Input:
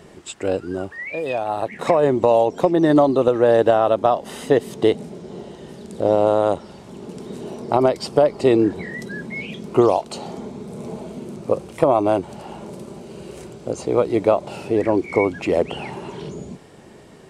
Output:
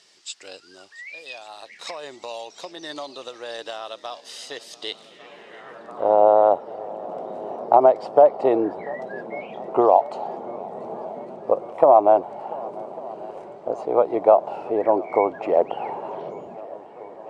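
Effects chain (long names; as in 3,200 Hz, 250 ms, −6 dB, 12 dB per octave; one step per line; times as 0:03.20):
feedback echo with a long and a short gap by turns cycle 1,149 ms, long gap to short 1.5 to 1, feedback 68%, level −21 dB
band-pass filter sweep 4,900 Hz → 760 Hz, 0:04.79–0:06.22
level +6.5 dB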